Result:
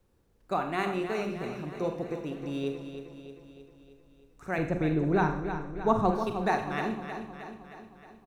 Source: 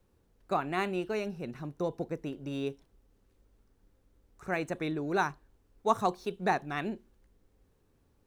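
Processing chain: 4.58–6.11 RIAA curve playback; feedback echo 0.312 s, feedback 58%, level -9 dB; Schroeder reverb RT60 0.63 s, combs from 32 ms, DRR 6 dB

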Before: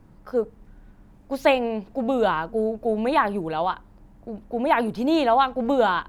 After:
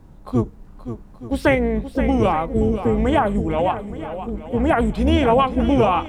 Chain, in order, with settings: octaver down 2 oct, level -3 dB; in parallel at +2.5 dB: limiter -15.5 dBFS, peak gain reduction 10 dB; on the sum: formant shift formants -4 st; swung echo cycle 0.873 s, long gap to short 1.5:1, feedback 30%, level -11 dB; gain -2 dB

